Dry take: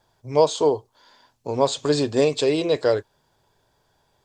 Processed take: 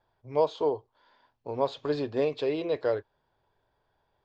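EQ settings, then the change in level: air absorption 290 m; bell 170 Hz -5.5 dB 1.8 oct; -5.5 dB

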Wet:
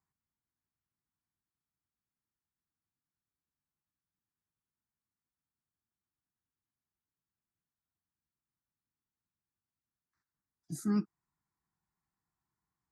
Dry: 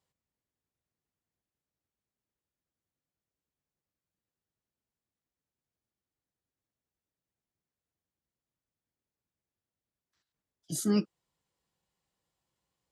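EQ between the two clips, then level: low shelf 120 Hz -4 dB; high shelf 3500 Hz -11.5 dB; fixed phaser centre 1300 Hz, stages 4; 0.0 dB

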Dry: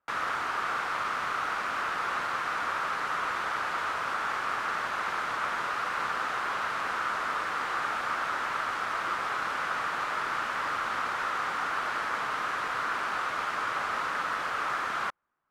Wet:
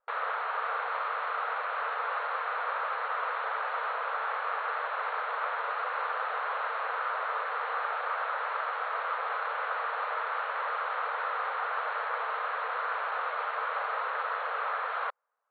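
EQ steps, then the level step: brick-wall FIR band-pass 430–4400 Hz; tilt -4 dB/oct; 0.0 dB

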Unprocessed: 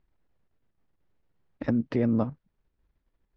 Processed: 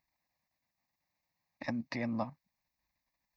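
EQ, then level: HPF 480 Hz 6 dB/oct; high shelf 2600 Hz +10 dB; fixed phaser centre 2100 Hz, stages 8; 0.0 dB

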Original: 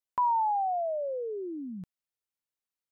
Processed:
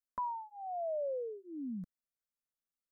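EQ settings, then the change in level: low shelf 170 Hz +9.5 dB; bell 340 Hz +2.5 dB 2.8 oct; fixed phaser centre 560 Hz, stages 8; -6.0 dB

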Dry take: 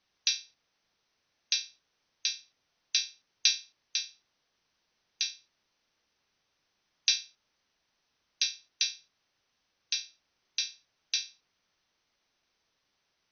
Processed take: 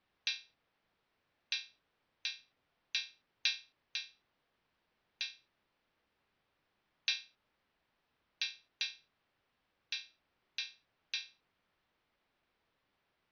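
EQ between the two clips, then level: air absorption 330 m; +2.0 dB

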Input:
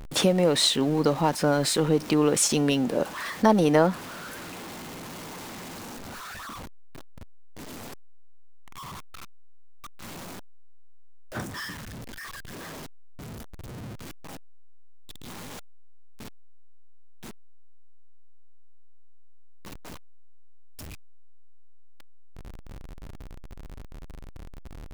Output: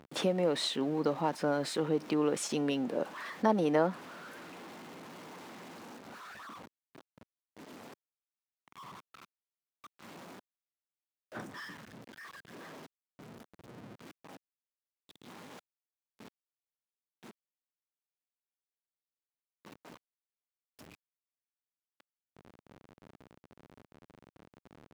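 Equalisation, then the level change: HPF 190 Hz 12 dB/oct; high shelf 4800 Hz -11.5 dB; -7.0 dB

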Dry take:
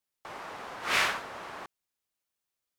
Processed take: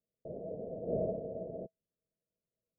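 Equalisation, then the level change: rippled Chebyshev low-pass 670 Hz, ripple 9 dB; +11.5 dB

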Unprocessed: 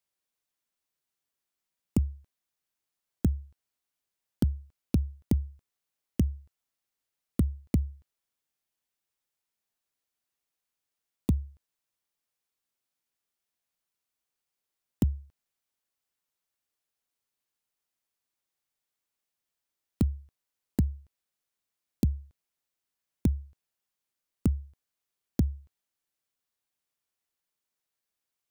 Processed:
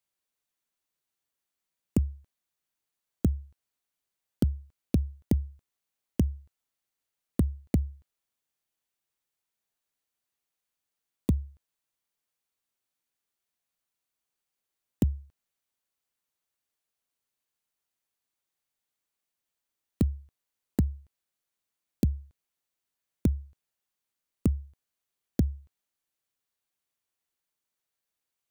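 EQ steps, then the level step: notch 5200 Hz, Q 22; dynamic EQ 780 Hz, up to +7 dB, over -47 dBFS, Q 0.83; 0.0 dB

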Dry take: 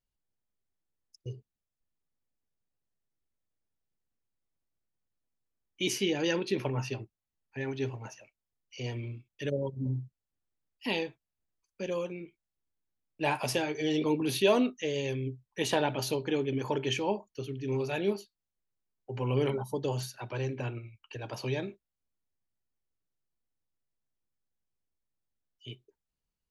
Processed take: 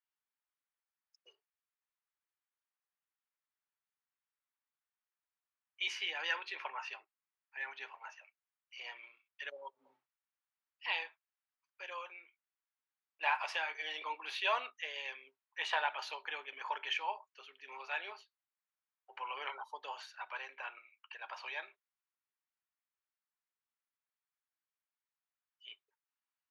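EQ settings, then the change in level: HPF 960 Hz 24 dB/oct; LPF 2300 Hz 12 dB/oct; +3.0 dB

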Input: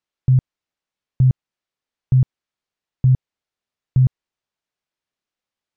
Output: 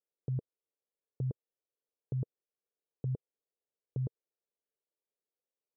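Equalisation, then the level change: band-pass 460 Hz, Q 3.8; air absorption 490 m; +2.0 dB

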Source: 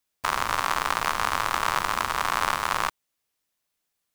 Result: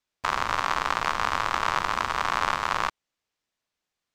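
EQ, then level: air absorption 53 m; bell 10000 Hz -7 dB 0.38 oct; 0.0 dB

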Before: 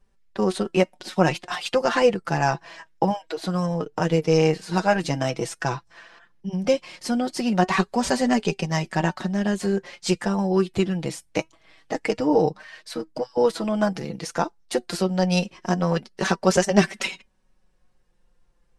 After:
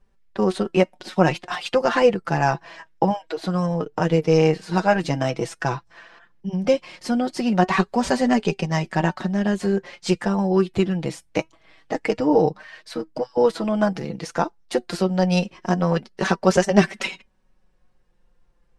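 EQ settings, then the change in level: high shelf 5000 Hz -8 dB; +2.0 dB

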